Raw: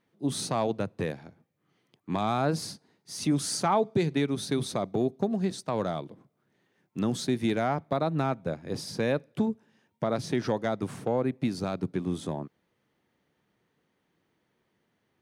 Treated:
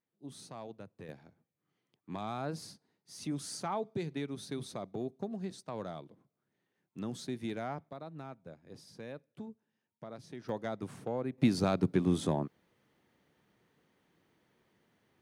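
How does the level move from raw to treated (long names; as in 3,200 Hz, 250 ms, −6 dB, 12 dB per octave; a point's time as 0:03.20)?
−18 dB
from 0:01.09 −11 dB
from 0:07.89 −18 dB
from 0:10.49 −8.5 dB
from 0:11.38 +2 dB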